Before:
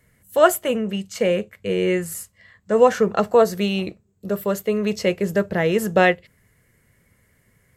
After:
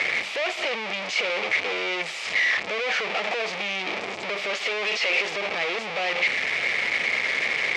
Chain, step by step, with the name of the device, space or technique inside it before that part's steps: 4.53–5.36 s: high-pass 1.2 kHz 6 dB/octave; home computer beeper (one-bit comparator; cabinet simulation 660–4500 Hz, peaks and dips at 1 kHz -5 dB, 1.5 kHz -7 dB, 2.3 kHz +9 dB, 4.2 kHz -3 dB)

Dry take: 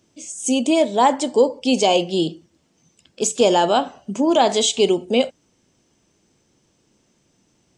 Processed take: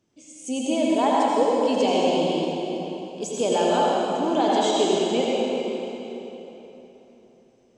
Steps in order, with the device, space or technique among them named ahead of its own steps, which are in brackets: swimming-pool hall (reverberation RT60 3.6 s, pre-delay 73 ms, DRR -5 dB; treble shelf 4.2 kHz -7 dB); trim -9 dB

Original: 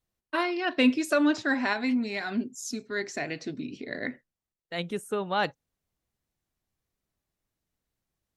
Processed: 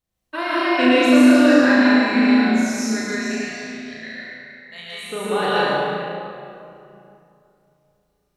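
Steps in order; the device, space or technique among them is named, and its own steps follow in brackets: 3.00–5.07 s: amplifier tone stack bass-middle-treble 10-0-10; tunnel (flutter echo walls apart 6.1 m, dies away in 0.79 s; reverberation RT60 2.7 s, pre-delay 104 ms, DRR -8 dB); trim -1 dB

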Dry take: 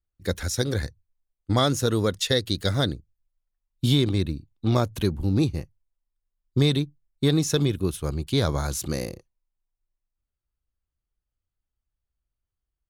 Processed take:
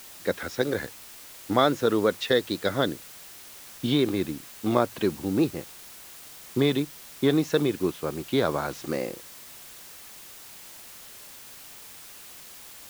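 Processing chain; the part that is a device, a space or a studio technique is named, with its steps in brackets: wax cylinder (band-pass 270–2500 Hz; wow and flutter; white noise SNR 17 dB); trim +3 dB

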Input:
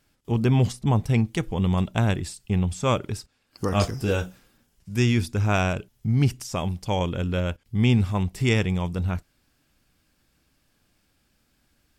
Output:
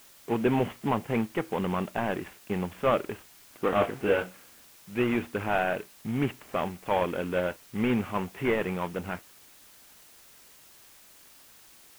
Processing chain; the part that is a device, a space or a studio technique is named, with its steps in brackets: army field radio (band-pass 320–2900 Hz; CVSD coder 16 kbps; white noise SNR 24 dB); trim +3.5 dB

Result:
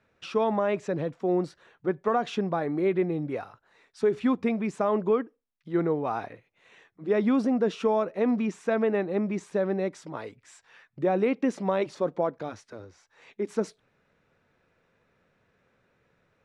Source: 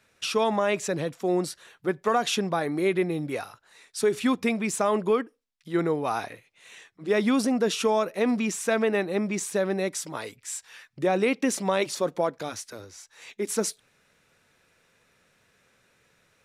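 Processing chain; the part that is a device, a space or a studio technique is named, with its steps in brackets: through cloth (low-pass 6.7 kHz 12 dB/octave; treble shelf 2.5 kHz -17 dB)

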